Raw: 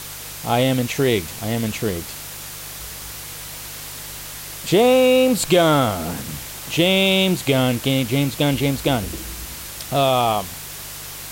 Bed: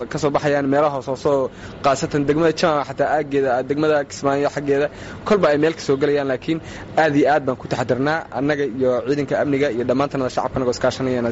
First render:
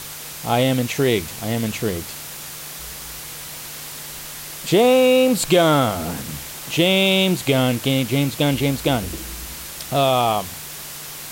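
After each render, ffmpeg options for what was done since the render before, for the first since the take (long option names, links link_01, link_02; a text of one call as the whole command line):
ffmpeg -i in.wav -af "bandreject=frequency=50:width_type=h:width=4,bandreject=frequency=100:width_type=h:width=4" out.wav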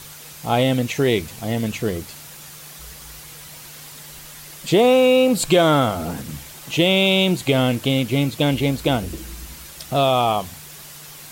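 ffmpeg -i in.wav -af "afftdn=noise_reduction=7:noise_floor=-34" out.wav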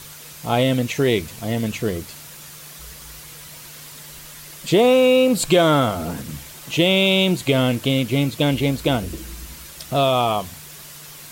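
ffmpeg -i in.wav -af "bandreject=frequency=790:width=13" out.wav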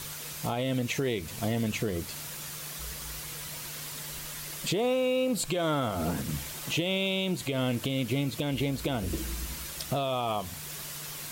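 ffmpeg -i in.wav -af "acompressor=threshold=-20dB:ratio=6,alimiter=limit=-20dB:level=0:latency=1:release=331" out.wav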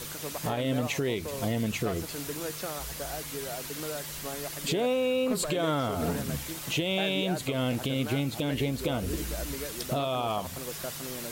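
ffmpeg -i in.wav -i bed.wav -filter_complex "[1:a]volume=-20.5dB[link_01];[0:a][link_01]amix=inputs=2:normalize=0" out.wav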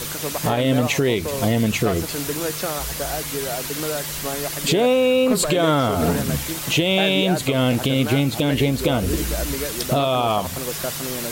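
ffmpeg -i in.wav -af "volume=10dB" out.wav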